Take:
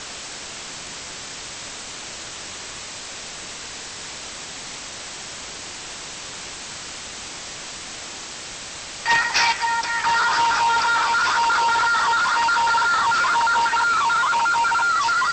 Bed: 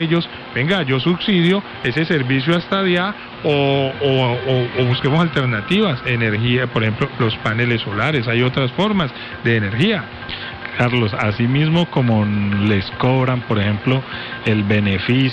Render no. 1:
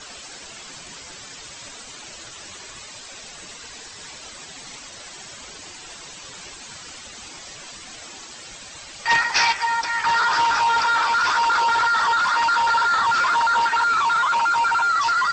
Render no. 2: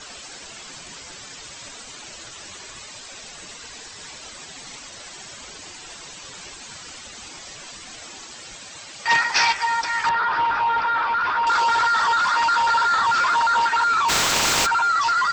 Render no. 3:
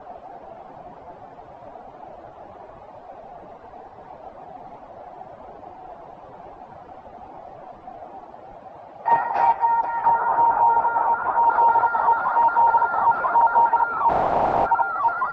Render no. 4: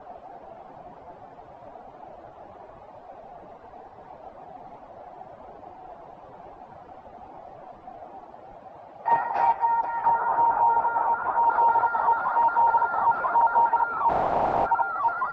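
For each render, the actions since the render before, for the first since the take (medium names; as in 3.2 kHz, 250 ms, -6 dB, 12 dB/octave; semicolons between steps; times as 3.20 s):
noise reduction 11 dB, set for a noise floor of -35 dBFS
8.61–9.41 s: high-pass 92 Hz; 10.09–11.47 s: distance through air 350 m; 14.08–14.65 s: spectral contrast reduction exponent 0.26
resonant low-pass 740 Hz, resonance Q 4.9
trim -3.5 dB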